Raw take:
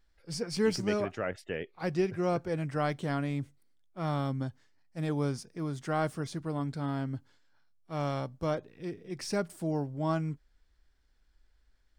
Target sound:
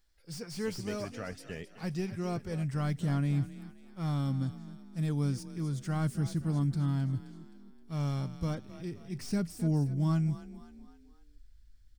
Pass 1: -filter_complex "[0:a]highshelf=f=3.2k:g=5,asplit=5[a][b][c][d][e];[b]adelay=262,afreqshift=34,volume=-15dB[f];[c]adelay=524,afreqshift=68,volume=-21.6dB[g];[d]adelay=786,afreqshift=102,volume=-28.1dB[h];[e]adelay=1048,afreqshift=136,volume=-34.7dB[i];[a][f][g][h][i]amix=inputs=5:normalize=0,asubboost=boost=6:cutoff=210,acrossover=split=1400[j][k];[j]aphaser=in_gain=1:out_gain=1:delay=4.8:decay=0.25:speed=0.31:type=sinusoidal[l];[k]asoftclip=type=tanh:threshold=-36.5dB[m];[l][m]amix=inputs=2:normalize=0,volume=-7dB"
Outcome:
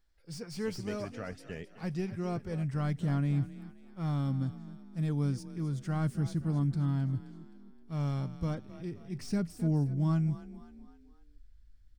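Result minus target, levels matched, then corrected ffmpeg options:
8000 Hz band -4.0 dB
-filter_complex "[0:a]highshelf=f=3.2k:g=13.5,asplit=5[a][b][c][d][e];[b]adelay=262,afreqshift=34,volume=-15dB[f];[c]adelay=524,afreqshift=68,volume=-21.6dB[g];[d]adelay=786,afreqshift=102,volume=-28.1dB[h];[e]adelay=1048,afreqshift=136,volume=-34.7dB[i];[a][f][g][h][i]amix=inputs=5:normalize=0,asubboost=boost=6:cutoff=210,acrossover=split=1400[j][k];[j]aphaser=in_gain=1:out_gain=1:delay=4.8:decay=0.25:speed=0.31:type=sinusoidal[l];[k]asoftclip=type=tanh:threshold=-36.5dB[m];[l][m]amix=inputs=2:normalize=0,volume=-7dB"

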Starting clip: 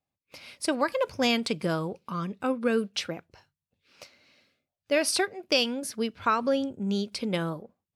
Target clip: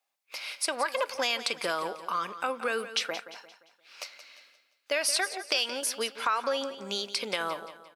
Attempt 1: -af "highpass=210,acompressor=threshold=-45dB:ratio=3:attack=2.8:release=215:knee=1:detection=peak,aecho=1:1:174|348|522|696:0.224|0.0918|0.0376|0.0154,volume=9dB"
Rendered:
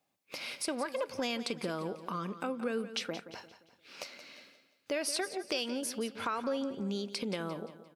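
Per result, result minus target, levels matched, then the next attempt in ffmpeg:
250 Hz band +12.5 dB; compressor: peak gain reduction +8.5 dB
-af "highpass=800,acompressor=threshold=-45dB:ratio=3:attack=2.8:release=215:knee=1:detection=peak,aecho=1:1:174|348|522|696:0.224|0.0918|0.0376|0.0154,volume=9dB"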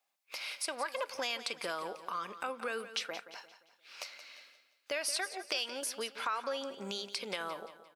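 compressor: peak gain reduction +7.5 dB
-af "highpass=800,acompressor=threshold=-34dB:ratio=3:attack=2.8:release=215:knee=1:detection=peak,aecho=1:1:174|348|522|696:0.224|0.0918|0.0376|0.0154,volume=9dB"

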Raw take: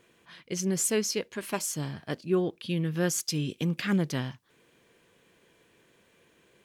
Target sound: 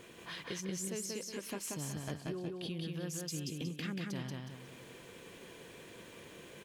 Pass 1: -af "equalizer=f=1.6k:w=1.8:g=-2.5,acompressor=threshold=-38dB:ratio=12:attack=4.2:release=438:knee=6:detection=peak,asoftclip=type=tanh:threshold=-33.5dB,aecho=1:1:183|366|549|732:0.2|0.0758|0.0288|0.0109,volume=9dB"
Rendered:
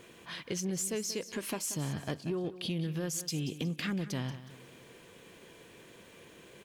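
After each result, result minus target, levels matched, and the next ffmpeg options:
compressor: peak gain reduction -8 dB; echo-to-direct -11.5 dB
-af "equalizer=f=1.6k:w=1.8:g=-2.5,acompressor=threshold=-46.5dB:ratio=12:attack=4.2:release=438:knee=6:detection=peak,asoftclip=type=tanh:threshold=-33.5dB,aecho=1:1:183|366|549|732:0.2|0.0758|0.0288|0.0109,volume=9dB"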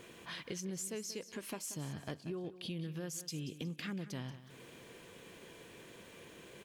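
echo-to-direct -11.5 dB
-af "equalizer=f=1.6k:w=1.8:g=-2.5,acompressor=threshold=-46.5dB:ratio=12:attack=4.2:release=438:knee=6:detection=peak,asoftclip=type=tanh:threshold=-33.5dB,aecho=1:1:183|366|549|732|915:0.75|0.285|0.108|0.0411|0.0156,volume=9dB"

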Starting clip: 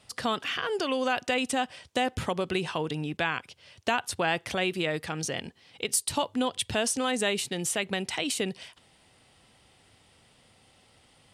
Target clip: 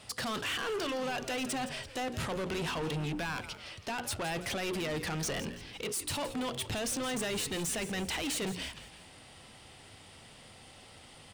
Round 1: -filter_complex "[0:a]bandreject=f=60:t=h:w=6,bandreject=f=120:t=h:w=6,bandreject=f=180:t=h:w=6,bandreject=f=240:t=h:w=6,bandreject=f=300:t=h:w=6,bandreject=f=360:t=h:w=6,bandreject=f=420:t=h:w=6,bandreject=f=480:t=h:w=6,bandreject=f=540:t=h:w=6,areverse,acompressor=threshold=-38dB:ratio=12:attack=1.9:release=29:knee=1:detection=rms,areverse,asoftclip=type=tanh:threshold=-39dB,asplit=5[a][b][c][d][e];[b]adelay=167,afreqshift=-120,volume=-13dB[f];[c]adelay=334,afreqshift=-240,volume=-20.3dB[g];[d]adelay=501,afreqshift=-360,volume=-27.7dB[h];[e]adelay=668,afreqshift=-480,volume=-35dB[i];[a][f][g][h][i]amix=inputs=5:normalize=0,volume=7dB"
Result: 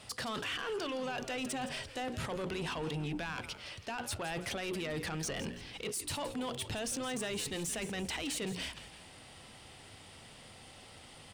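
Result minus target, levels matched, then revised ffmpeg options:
compressor: peak gain reduction +8 dB
-filter_complex "[0:a]bandreject=f=60:t=h:w=6,bandreject=f=120:t=h:w=6,bandreject=f=180:t=h:w=6,bandreject=f=240:t=h:w=6,bandreject=f=300:t=h:w=6,bandreject=f=360:t=h:w=6,bandreject=f=420:t=h:w=6,bandreject=f=480:t=h:w=6,bandreject=f=540:t=h:w=6,areverse,acompressor=threshold=-29.5dB:ratio=12:attack=1.9:release=29:knee=1:detection=rms,areverse,asoftclip=type=tanh:threshold=-39dB,asplit=5[a][b][c][d][e];[b]adelay=167,afreqshift=-120,volume=-13dB[f];[c]adelay=334,afreqshift=-240,volume=-20.3dB[g];[d]adelay=501,afreqshift=-360,volume=-27.7dB[h];[e]adelay=668,afreqshift=-480,volume=-35dB[i];[a][f][g][h][i]amix=inputs=5:normalize=0,volume=7dB"

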